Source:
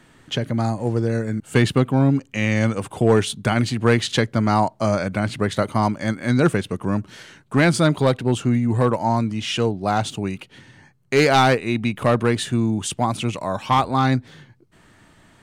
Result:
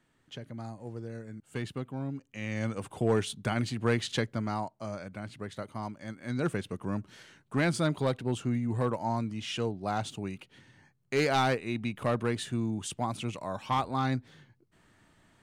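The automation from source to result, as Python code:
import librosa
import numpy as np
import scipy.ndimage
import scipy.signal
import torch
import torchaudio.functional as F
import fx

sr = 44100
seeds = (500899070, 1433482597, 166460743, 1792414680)

y = fx.gain(x, sr, db=fx.line((2.2, -19.0), (2.81, -10.5), (4.22, -10.5), (4.76, -18.0), (6.08, -18.0), (6.61, -11.0)))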